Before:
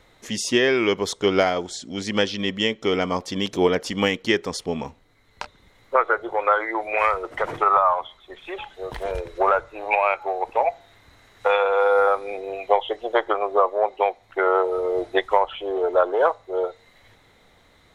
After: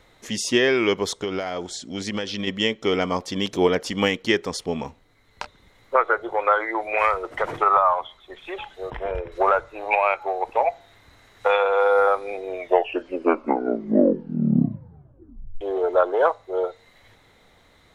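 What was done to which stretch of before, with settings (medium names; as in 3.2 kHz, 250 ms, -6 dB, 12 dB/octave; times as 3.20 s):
1.20–2.47 s: compression, threshold -23 dBFS
8.90–9.32 s: Savitzky-Golay filter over 25 samples
12.39 s: tape stop 3.22 s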